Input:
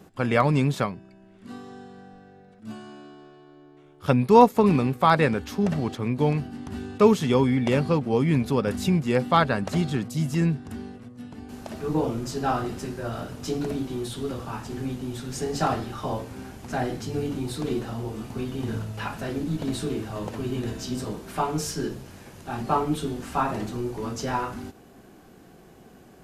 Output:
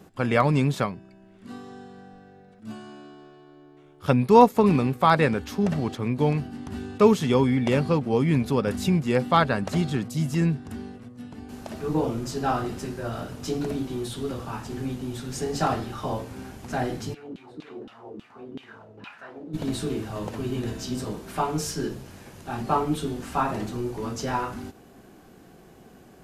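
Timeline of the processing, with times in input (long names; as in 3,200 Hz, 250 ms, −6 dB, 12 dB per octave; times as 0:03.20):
0:17.13–0:19.53: auto-filter band-pass saw down 4.9 Hz → 1.5 Hz 250–3,300 Hz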